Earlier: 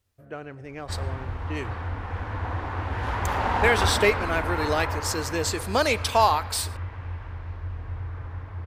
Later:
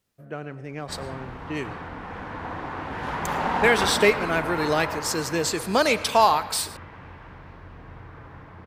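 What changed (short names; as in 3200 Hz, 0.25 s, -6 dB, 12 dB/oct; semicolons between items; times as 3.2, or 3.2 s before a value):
speech: send +8.0 dB; master: add resonant low shelf 120 Hz -8 dB, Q 3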